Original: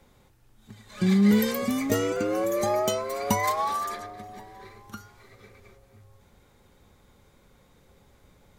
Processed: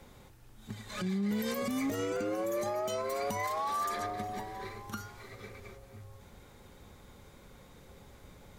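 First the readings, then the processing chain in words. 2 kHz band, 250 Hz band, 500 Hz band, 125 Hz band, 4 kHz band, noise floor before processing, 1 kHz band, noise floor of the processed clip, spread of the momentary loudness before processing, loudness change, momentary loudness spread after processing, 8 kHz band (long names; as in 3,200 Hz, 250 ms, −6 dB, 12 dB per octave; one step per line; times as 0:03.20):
−6.5 dB, −10.5 dB, −7.0 dB, −10.5 dB, −7.0 dB, −60 dBFS, −5.5 dB, −56 dBFS, 22 LU, −9.5 dB, 16 LU, −8.5 dB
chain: in parallel at −4 dB: asymmetric clip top −24.5 dBFS
on the sum: downward compressor, threshold −28 dBFS, peak gain reduction 14 dB
brickwall limiter −26 dBFS, peak gain reduction 9.5 dB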